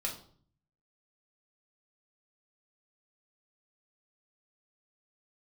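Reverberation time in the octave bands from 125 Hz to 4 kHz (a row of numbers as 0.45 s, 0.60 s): 0.95 s, 0.75 s, 0.55 s, 0.50 s, 0.35 s, 0.40 s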